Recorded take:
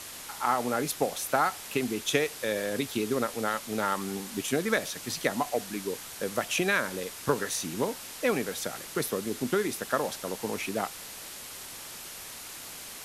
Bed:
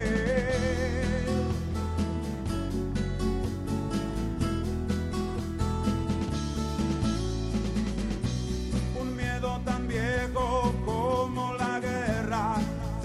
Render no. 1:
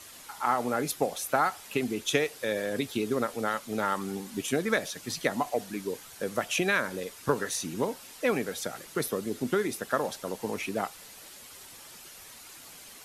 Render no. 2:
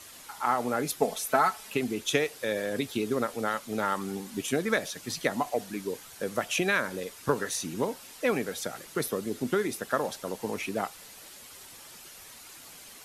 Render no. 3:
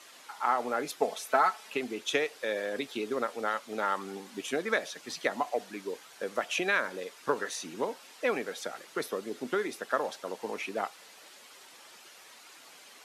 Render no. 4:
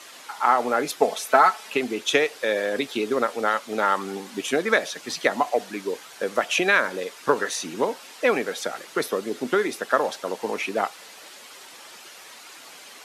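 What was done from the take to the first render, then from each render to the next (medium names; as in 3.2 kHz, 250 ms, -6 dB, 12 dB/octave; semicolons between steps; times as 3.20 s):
noise reduction 8 dB, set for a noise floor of -43 dBFS
1.00–1.70 s: comb 4.6 ms
Bessel high-pass 410 Hz, order 2; peaking EQ 13 kHz -12 dB 1.4 oct
trim +8.5 dB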